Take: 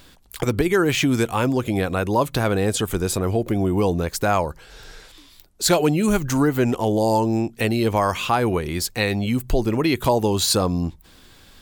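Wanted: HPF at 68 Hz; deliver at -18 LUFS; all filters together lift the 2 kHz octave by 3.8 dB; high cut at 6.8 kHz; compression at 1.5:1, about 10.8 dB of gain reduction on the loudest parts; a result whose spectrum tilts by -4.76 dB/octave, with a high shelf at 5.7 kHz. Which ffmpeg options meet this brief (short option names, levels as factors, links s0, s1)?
-af "highpass=68,lowpass=6800,equalizer=f=2000:t=o:g=4.5,highshelf=f=5700:g=4,acompressor=threshold=0.00562:ratio=1.5,volume=4.22"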